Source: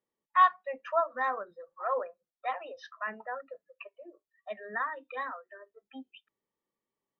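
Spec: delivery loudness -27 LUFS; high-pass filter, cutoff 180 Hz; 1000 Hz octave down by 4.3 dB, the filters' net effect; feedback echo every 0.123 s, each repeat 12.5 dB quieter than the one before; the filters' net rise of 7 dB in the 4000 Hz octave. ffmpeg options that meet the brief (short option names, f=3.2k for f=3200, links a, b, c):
-af "highpass=180,equalizer=f=1k:t=o:g=-5.5,equalizer=f=4k:t=o:g=9,aecho=1:1:123|246|369:0.237|0.0569|0.0137,volume=8dB"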